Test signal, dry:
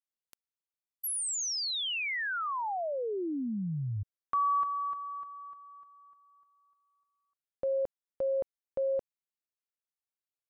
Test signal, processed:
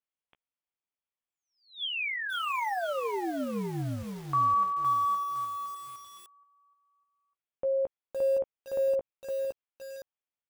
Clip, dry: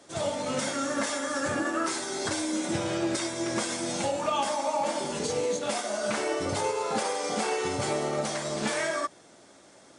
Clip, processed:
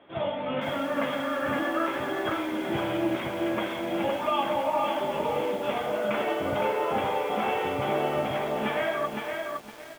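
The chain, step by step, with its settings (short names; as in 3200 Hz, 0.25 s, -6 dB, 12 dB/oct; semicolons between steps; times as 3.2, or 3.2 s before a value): rippled Chebyshev low-pass 3400 Hz, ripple 3 dB; doubler 15 ms -10 dB; lo-fi delay 0.513 s, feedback 35%, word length 8-bit, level -3.5 dB; gain +1.5 dB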